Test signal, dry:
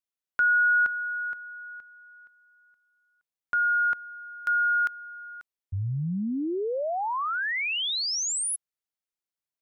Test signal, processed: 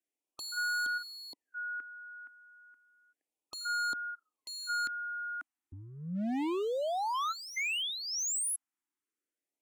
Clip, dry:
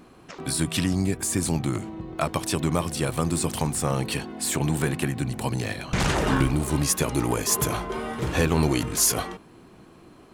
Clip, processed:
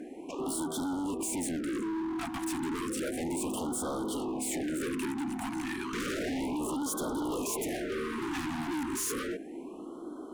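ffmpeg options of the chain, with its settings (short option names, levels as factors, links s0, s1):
-filter_complex "[0:a]asplit=2[s0][s1];[s1]acompressor=threshold=0.0251:ratio=10:attack=0.55:release=37:knee=6:detection=rms,volume=0.794[s2];[s0][s2]amix=inputs=2:normalize=0,lowpass=10000,acontrast=23,lowshelf=f=190:t=q:w=3:g=-14,asoftclip=type=tanh:threshold=0.447,equalizer=f=4300:w=1.5:g=-13.5,volume=18.8,asoftclip=hard,volume=0.0531,afftfilt=real='re*(1-between(b*sr/1024,480*pow(2200/480,0.5+0.5*sin(2*PI*0.32*pts/sr))/1.41,480*pow(2200/480,0.5+0.5*sin(2*PI*0.32*pts/sr))*1.41))':imag='im*(1-between(b*sr/1024,480*pow(2200/480,0.5+0.5*sin(2*PI*0.32*pts/sr))/1.41,480*pow(2200/480,0.5+0.5*sin(2*PI*0.32*pts/sr))*1.41))':win_size=1024:overlap=0.75,volume=0.501"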